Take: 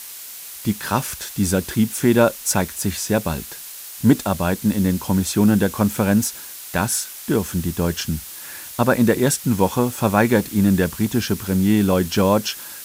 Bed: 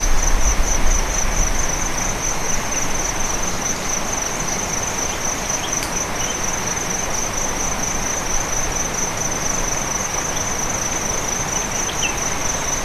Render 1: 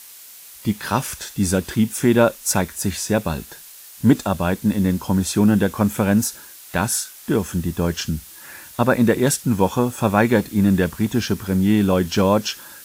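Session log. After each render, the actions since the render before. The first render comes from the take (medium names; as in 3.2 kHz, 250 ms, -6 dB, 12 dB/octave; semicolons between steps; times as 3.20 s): noise print and reduce 6 dB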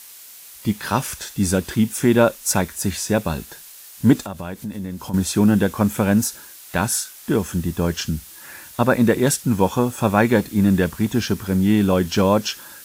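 4.23–5.14 s: compression 3:1, threshold -29 dBFS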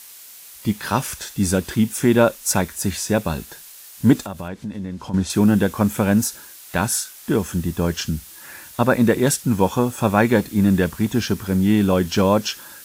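4.48–5.30 s: distance through air 76 m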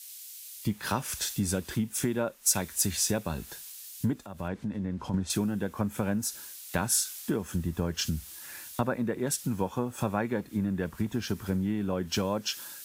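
compression 12:1, threshold -26 dBFS, peak gain reduction 18.5 dB; three bands expanded up and down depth 70%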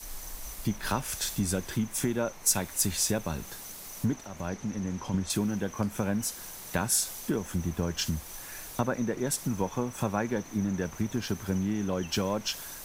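add bed -26.5 dB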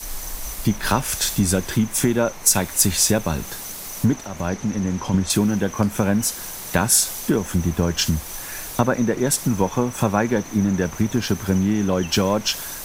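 trim +10 dB; peak limiter -2 dBFS, peak gain reduction 3 dB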